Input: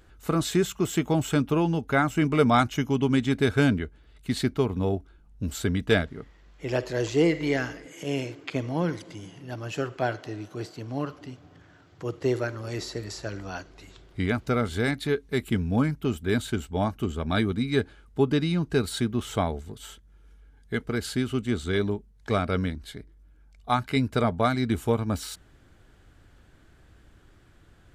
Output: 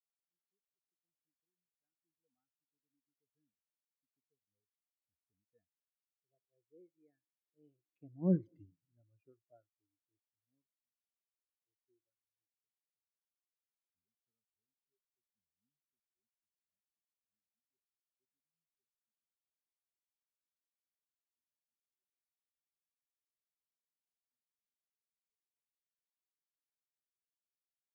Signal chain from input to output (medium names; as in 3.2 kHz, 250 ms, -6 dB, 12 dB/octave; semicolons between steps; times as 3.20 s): Doppler pass-by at 8.51 s, 21 m/s, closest 2.1 m; Chebyshev shaper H 2 -17 dB, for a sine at -22 dBFS; spectral contrast expander 2.5:1; trim +2 dB